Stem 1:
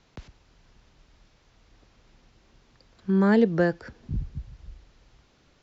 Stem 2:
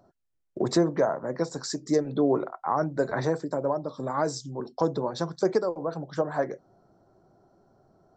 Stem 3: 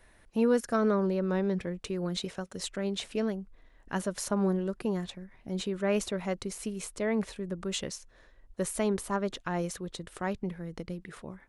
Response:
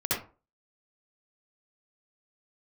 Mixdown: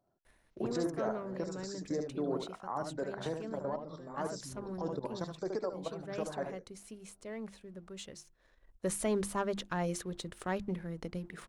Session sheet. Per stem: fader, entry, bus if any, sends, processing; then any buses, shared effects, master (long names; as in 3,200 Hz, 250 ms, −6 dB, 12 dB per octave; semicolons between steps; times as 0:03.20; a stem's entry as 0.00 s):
−17.5 dB, 0.40 s, bus A, no send, no echo send, downward compressor 2 to 1, threshold −27 dBFS, peak gain reduction 7 dB
−5.0 dB, 0.00 s, bus A, no send, echo send −13 dB, no processing
−5.0 dB, 0.25 s, no bus, no send, no echo send, mains-hum notches 50/100/150/200/250/300/350 Hz; leveller curve on the samples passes 1; every ending faded ahead of time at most 520 dB per second; automatic ducking −11 dB, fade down 0.25 s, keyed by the second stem
bus A: 0.0 dB, output level in coarse steps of 16 dB; brickwall limiter −26.5 dBFS, peak gain reduction 6.5 dB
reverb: not used
echo: single-tap delay 74 ms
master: no processing